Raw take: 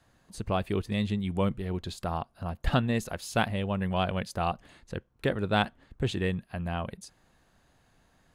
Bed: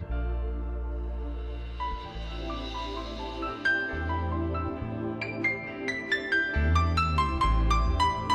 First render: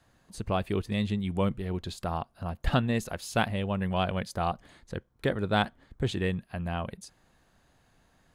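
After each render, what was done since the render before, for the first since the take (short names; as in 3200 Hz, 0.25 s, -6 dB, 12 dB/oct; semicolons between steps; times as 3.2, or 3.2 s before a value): 4.16–6.12 notch 2700 Hz, Q 11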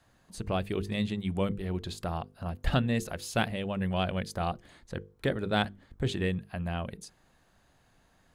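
notches 50/100/150/200/250/300/350/400/450/500 Hz; dynamic EQ 990 Hz, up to -5 dB, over -43 dBFS, Q 1.5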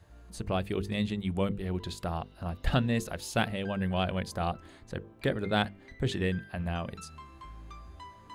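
add bed -22.5 dB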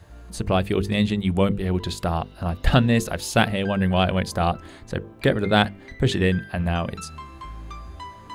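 gain +9.5 dB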